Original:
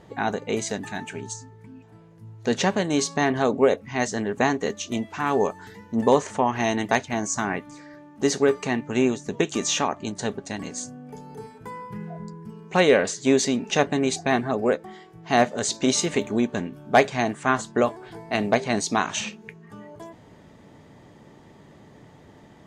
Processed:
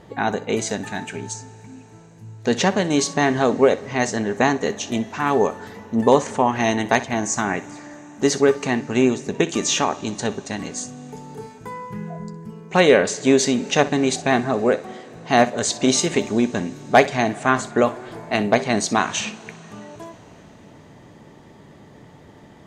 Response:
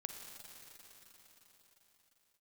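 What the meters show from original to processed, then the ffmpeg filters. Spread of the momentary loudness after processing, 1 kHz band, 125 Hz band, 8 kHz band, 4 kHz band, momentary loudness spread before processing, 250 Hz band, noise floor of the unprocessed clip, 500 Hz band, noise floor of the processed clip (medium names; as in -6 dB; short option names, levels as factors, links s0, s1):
18 LU, +3.5 dB, +3.5 dB, +3.5 dB, +3.5 dB, 17 LU, +3.5 dB, -50 dBFS, +3.5 dB, -47 dBFS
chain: -filter_complex "[0:a]asplit=2[s0][s1];[1:a]atrim=start_sample=2205,adelay=62[s2];[s1][s2]afir=irnorm=-1:irlink=0,volume=0.224[s3];[s0][s3]amix=inputs=2:normalize=0,volume=1.5"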